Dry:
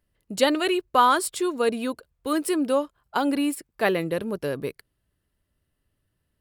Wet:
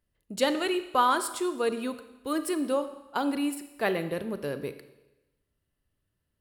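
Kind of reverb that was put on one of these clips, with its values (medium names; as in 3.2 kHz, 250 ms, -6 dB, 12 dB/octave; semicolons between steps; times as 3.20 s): Schroeder reverb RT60 1 s, combs from 28 ms, DRR 10.5 dB; trim -5 dB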